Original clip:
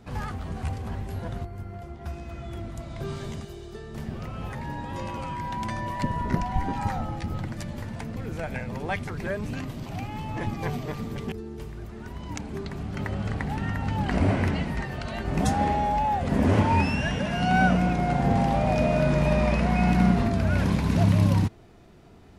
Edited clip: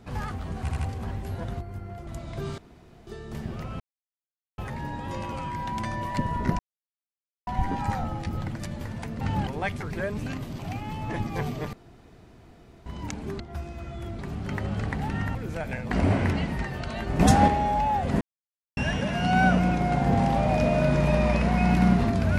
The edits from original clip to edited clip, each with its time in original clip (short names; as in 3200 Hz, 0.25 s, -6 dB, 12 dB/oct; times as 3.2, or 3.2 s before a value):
0.61 stutter 0.08 s, 3 plays
1.91–2.7 move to 12.67
3.21–3.7 room tone
4.43 insert silence 0.78 s
6.44 insert silence 0.88 s
8.18–8.74 swap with 13.83–14.09
11–12.13 room tone
15.38–15.66 gain +6 dB
16.39–16.95 mute